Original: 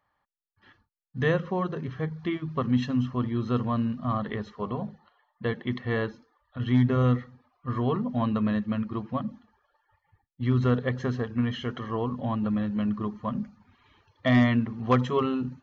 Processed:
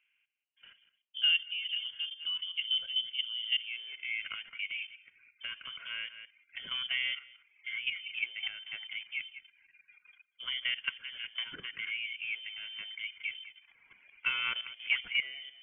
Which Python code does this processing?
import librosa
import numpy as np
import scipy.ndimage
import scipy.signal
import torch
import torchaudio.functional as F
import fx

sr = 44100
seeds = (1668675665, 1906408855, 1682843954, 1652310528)

y = x + 10.0 ** (-17.5 / 20.0) * np.pad(x, (int(194 * sr / 1000.0), 0))[:len(x)]
y = fx.level_steps(y, sr, step_db=12)
y = fx.filter_sweep_bandpass(y, sr, from_hz=440.0, to_hz=960.0, start_s=3.45, end_s=3.96, q=1.8)
y = fx.freq_invert(y, sr, carrier_hz=3300)
y = fx.band_squash(y, sr, depth_pct=40)
y = y * librosa.db_to_amplitude(5.5)